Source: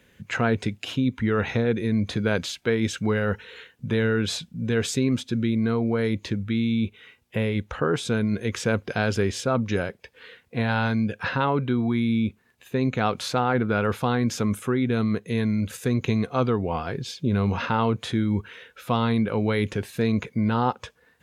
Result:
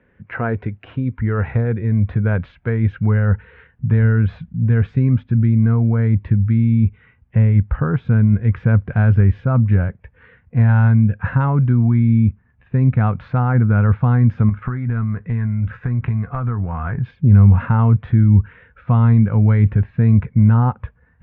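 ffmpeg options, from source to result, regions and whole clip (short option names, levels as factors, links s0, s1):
-filter_complex "[0:a]asettb=1/sr,asplit=3[s0][s1][s2];[s0]atrim=end=14.494[s3];[s1]atrim=start=14.49:end=17.11,asetpts=PTS-STARTPTS,afade=t=in:d=0.004:c=qsin,afade=t=out:st=2.616:d=0.004:c=qsin,acompressor=threshold=0.0447:ratio=10:attack=3.2:release=140:knee=1:detection=peak,equalizer=f=1400:w=0.91:g=9.5,asplit=2[s4][s5];[s5]adelay=17,volume=0.224[s6];[s4][s6]amix=inputs=2:normalize=0,atrim=end_sample=115542[s7];[s2]atrim=start=17.106[s8];[s3][s7]acrossfade=d=0.004:c1=hsin:c2=qsin[s9];[s9][s8]acrossfade=d=0.004:c1=qsin:c2=hsin,lowpass=f=1900:w=0.5412,lowpass=f=1900:w=1.3066,asubboost=boost=12:cutoff=110,volume=1.19"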